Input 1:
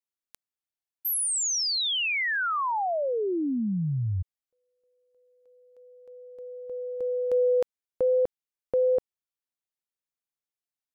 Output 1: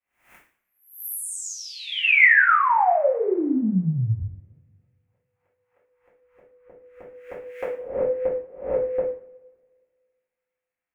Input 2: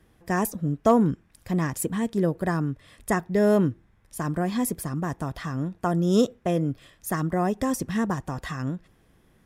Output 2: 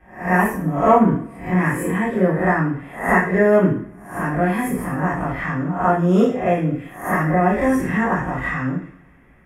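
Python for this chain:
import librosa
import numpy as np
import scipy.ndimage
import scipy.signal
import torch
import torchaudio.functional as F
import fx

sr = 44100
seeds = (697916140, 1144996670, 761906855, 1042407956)

y = fx.spec_swells(x, sr, rise_s=0.46)
y = fx.high_shelf_res(y, sr, hz=3000.0, db=-11.5, q=3.0)
y = fx.rev_double_slope(y, sr, seeds[0], early_s=0.47, late_s=1.8, knee_db=-25, drr_db=-8.5)
y = y * 10.0 ** (-3.0 / 20.0)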